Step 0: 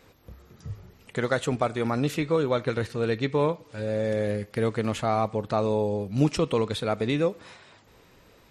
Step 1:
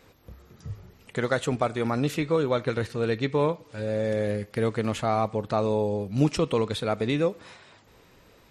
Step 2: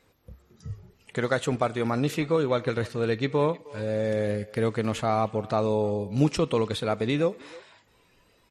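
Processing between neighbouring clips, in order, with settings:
nothing audible
speakerphone echo 0.31 s, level -20 dB; spectral noise reduction 8 dB

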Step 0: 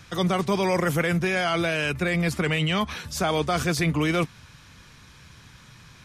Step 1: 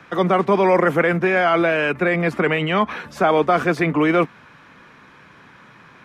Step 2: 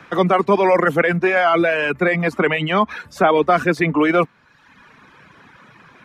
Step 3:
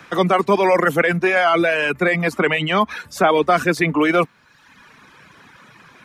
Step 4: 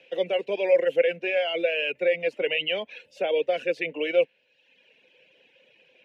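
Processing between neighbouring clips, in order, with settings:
three-band isolator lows -23 dB, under 200 Hz, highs -21 dB, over 2300 Hz; gain +9 dB
reverb removal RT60 1 s; gain +2.5 dB
high shelf 4300 Hz +11 dB; gain -1 dB
double band-pass 1200 Hz, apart 2.4 oct; dynamic EQ 1600 Hz, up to +6 dB, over -45 dBFS, Q 1.5

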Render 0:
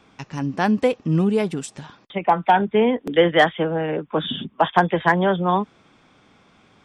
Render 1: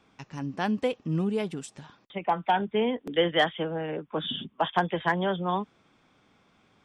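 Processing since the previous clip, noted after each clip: dynamic EQ 3100 Hz, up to +6 dB, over -43 dBFS, Q 3.5; gain -8.5 dB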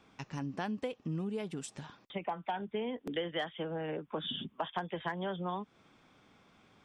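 compressor 4:1, threshold -35 dBFS, peak gain reduction 14.5 dB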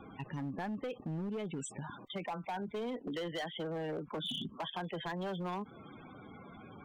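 loudest bins only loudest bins 32; hard clip -34 dBFS, distortion -12 dB; fast leveller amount 50%; gain -1 dB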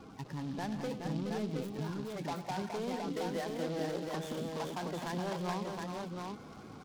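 median filter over 15 samples; on a send: tapped delay 0.101/0.165/0.211/0.421/0.719 s -13.5/-17/-9.5/-5.5/-3.5 dB; on the sum: noise-modulated delay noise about 3400 Hz, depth 0.044 ms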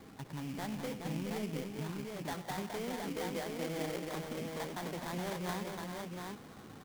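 sample-rate reducer 2700 Hz, jitter 20%; gain -2 dB

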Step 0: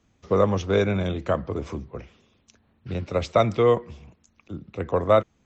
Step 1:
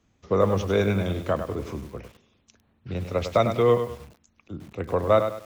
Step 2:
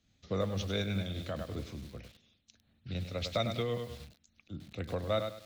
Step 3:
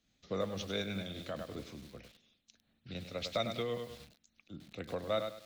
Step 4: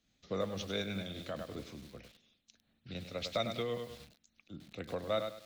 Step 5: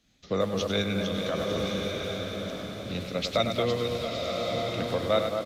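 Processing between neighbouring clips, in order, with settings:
lo-fi delay 0.1 s, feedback 35%, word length 7-bit, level -8 dB; gain -1.5 dB
fifteen-band EQ 400 Hz -8 dB, 1000 Hz -11 dB, 4000 Hz +10 dB; in parallel at -2.5 dB: compressor, threshold -32 dBFS, peak gain reduction 13.5 dB; on the sum: noise-modulated level, depth 60%; gain -7.5 dB
bell 83 Hz -10.5 dB 1.4 oct; gain -1.5 dB
nothing audible
downsampling 32000 Hz; echo with dull and thin repeats by turns 0.225 s, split 1500 Hz, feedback 73%, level -5.5 dB; bloom reverb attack 1.2 s, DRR 2.5 dB; gain +8.5 dB

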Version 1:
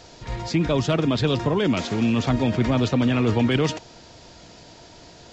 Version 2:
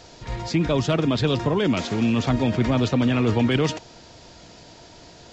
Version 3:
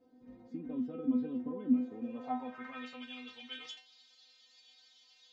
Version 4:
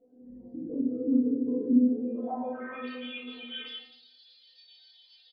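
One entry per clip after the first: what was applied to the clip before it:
nothing audible
metallic resonator 250 Hz, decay 0.32 s, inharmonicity 0.002; dynamic EQ 4900 Hz, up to -4 dB, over -56 dBFS, Q 0.76; band-pass sweep 280 Hz -> 3600 Hz, 1.79–3.12; gain +6 dB
formant sharpening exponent 2; shoebox room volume 170 m³, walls mixed, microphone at 1.6 m; downsampling 11025 Hz

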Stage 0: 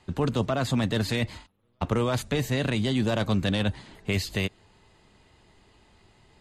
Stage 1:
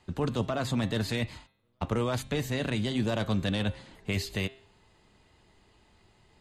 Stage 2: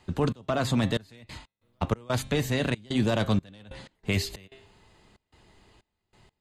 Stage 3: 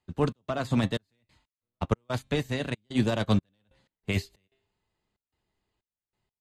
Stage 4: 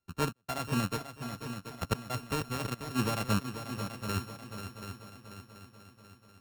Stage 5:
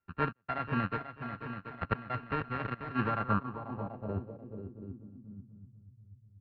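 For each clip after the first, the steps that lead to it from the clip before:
de-hum 133.1 Hz, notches 32; gain -3.5 dB
step gate "xx.xxx..x.xx.xx" 93 bpm -24 dB; gain +4 dB
upward expander 2.5:1, over -38 dBFS; gain +2.5 dB
sample sorter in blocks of 32 samples; multi-head echo 0.244 s, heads second and third, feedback 52%, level -10 dB; gain -5.5 dB
low-pass sweep 1800 Hz -> 120 Hz, 2.98–5.98; downsampling 11025 Hz; gain -2 dB

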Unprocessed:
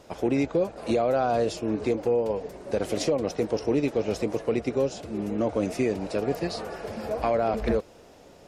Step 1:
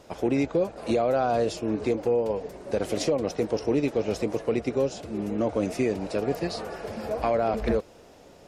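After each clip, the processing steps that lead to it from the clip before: nothing audible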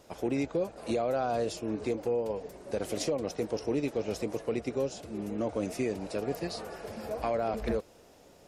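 high shelf 8000 Hz +9 dB; gain -6 dB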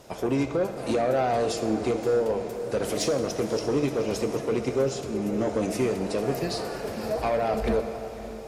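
sine folder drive 3 dB, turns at -20 dBFS; diffused feedback echo 0.569 s, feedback 42%, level -13 dB; reverb RT60 1.8 s, pre-delay 4 ms, DRR 6.5 dB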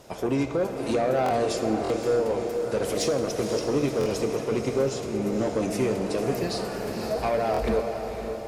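diffused feedback echo 0.512 s, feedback 49%, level -9 dB; stuck buffer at 1.24/1.83/3.99/7.52, samples 1024, times 2

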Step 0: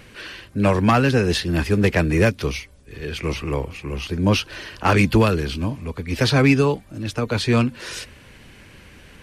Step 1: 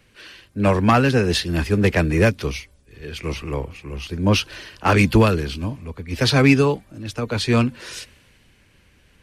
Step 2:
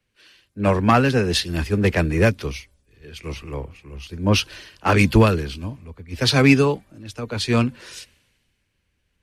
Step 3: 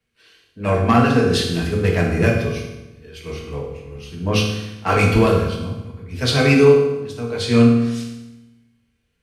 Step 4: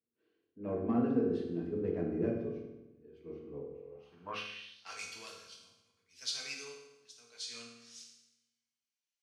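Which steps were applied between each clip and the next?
three-band expander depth 40%
three-band expander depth 40%; gain -1.5 dB
reverb RT60 1.0 s, pre-delay 3 ms, DRR -3 dB; gain -4 dB
band-pass sweep 320 Hz -> 6000 Hz, 3.72–4.96; gain -8.5 dB

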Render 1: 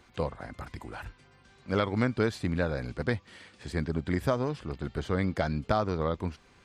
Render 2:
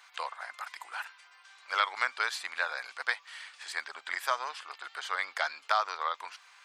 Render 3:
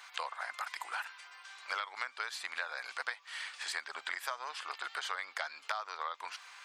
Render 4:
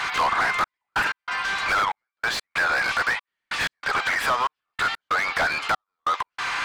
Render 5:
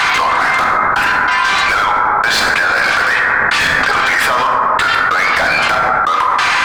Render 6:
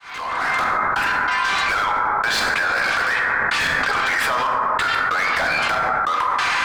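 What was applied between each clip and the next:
HPF 940 Hz 24 dB/oct; gain +6 dB
compressor 8:1, threshold -39 dBFS, peak gain reduction 17 dB; gain +4.5 dB
overdrive pedal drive 33 dB, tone 1500 Hz, clips at -17.5 dBFS; step gate "xxxx..x." 94 bpm -60 dB; gain +6.5 dB
plate-style reverb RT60 1.3 s, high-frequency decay 0.35×, DRR 3 dB; fast leveller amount 100%; gain +4.5 dB
opening faded in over 0.53 s; gain -7 dB

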